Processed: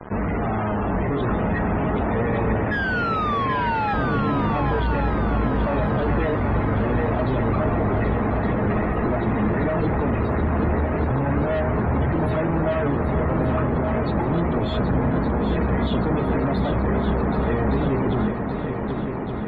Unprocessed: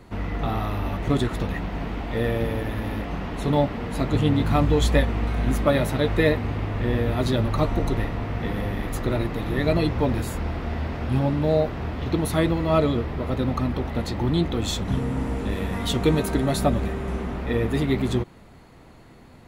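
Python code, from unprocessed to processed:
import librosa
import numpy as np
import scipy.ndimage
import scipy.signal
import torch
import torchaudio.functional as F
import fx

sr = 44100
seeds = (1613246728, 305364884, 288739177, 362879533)

p1 = scipy.signal.sosfilt(scipy.signal.butter(4, 46.0, 'highpass', fs=sr, output='sos'), x)
p2 = fx.peak_eq(p1, sr, hz=12000.0, db=-4.0, octaves=1.6)
p3 = fx.hum_notches(p2, sr, base_hz=50, count=6)
p4 = fx.over_compress(p3, sr, threshold_db=-24.0, ratio=-0.5)
p5 = p3 + F.gain(torch.from_numpy(p4), 2.0).numpy()
p6 = fx.comb_fb(p5, sr, f0_hz=210.0, decay_s=0.26, harmonics='all', damping=0.0, mix_pct=70)
p7 = fx.spec_paint(p6, sr, seeds[0], shape='fall', start_s=2.71, length_s=1.23, low_hz=800.0, high_hz=1700.0, level_db=-21.0)
p8 = fx.fuzz(p7, sr, gain_db=49.0, gate_db=-45.0)
p9 = fx.spec_topn(p8, sr, count=64)
p10 = fx.air_absorb(p9, sr, metres=440.0)
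p11 = p10 + fx.echo_heads(p10, sr, ms=389, heads='second and third', feedback_pct=60, wet_db=-7.5, dry=0)
y = F.gain(torch.from_numpy(p11), -7.5).numpy()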